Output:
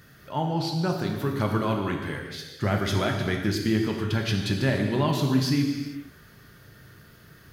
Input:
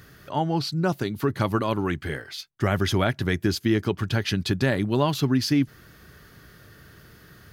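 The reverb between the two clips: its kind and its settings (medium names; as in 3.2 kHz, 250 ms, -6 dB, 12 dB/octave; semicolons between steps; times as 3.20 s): gated-style reverb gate 490 ms falling, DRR 1 dB; trim -4 dB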